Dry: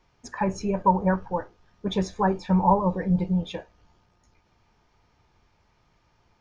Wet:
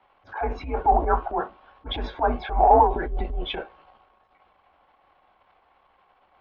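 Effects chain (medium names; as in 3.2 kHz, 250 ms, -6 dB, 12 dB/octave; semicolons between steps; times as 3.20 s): transient shaper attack -10 dB, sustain +7 dB; mistuned SSB -140 Hz 210–3500 Hz; ten-band graphic EQ 125 Hz -12 dB, 250 Hz -8 dB, 1 kHz +6 dB, 2 kHz -4 dB; trim +5.5 dB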